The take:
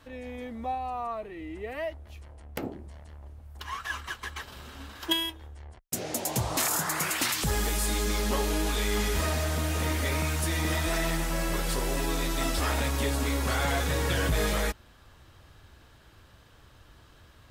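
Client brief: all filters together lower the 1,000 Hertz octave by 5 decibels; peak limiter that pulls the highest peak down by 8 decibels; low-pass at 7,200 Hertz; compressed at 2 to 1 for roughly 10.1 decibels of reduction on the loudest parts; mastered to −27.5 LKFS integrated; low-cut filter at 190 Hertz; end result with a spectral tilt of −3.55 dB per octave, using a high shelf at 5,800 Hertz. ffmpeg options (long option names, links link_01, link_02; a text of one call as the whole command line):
ffmpeg -i in.wav -af "highpass=190,lowpass=7200,equalizer=frequency=1000:width_type=o:gain=-6.5,highshelf=frequency=5800:gain=-8.5,acompressor=threshold=-43dB:ratio=2,volume=15.5dB,alimiter=limit=-18.5dB:level=0:latency=1" out.wav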